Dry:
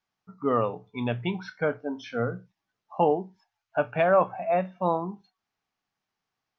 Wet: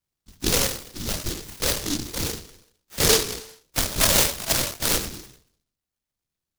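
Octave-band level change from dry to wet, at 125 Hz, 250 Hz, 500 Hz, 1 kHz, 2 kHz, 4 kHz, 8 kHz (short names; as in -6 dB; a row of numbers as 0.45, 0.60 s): +2.5 dB, -0.5 dB, -4.5 dB, -6.0 dB, +5.0 dB, +22.5 dB, n/a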